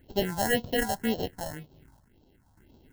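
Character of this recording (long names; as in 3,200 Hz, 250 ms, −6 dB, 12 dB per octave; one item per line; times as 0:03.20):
aliases and images of a low sample rate 1,200 Hz, jitter 0%
phaser sweep stages 4, 1.9 Hz, lowest notch 370–1,900 Hz
sample-and-hold tremolo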